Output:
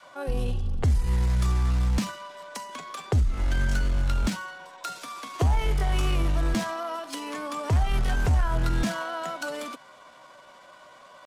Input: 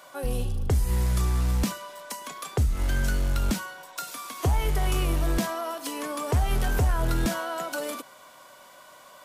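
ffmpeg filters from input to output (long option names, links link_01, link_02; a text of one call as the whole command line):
ffmpeg -i in.wav -af "adynamicequalizer=threshold=0.00562:dfrequency=430:dqfactor=1.2:tfrequency=430:tqfactor=1.2:attack=5:release=100:ratio=0.375:range=2.5:mode=cutabove:tftype=bell,atempo=0.82,adynamicsmooth=sensitivity=7:basefreq=5700,volume=1dB" out.wav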